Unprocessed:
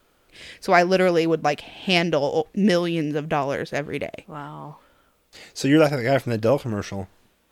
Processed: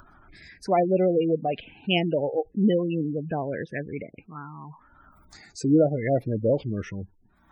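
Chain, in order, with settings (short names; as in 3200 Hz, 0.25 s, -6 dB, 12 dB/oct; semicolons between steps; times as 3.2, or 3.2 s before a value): spectral gate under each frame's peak -15 dB strong; upward compressor, threshold -36 dBFS; envelope phaser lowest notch 470 Hz, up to 1600 Hz, full sweep at -16.5 dBFS; gain -1.5 dB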